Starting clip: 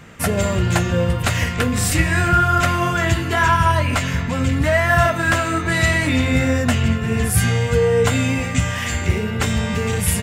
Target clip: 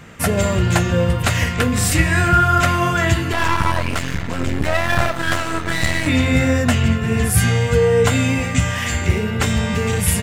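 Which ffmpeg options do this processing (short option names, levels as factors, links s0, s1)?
-filter_complex "[0:a]asettb=1/sr,asplit=3[s0][s1][s2];[s0]atrim=end=3.324[s3];[s1]atrim=start=3.32:end=6.06,asetpts=PTS-STARTPTS,afade=t=in:d=0.004:c=qsin,afade=t=out:st=2.736:d=0.004:c=qsin,aeval=exprs='max(val(0),0)':c=same[s4];[s2]atrim=start=6.056[s5];[s3][s4]acrossfade=d=0.004:c1=hsin:c2=qsin[s6];[s6][s5]acrossfade=d=0.004:c1=qsin:c2=hsin,volume=1.19"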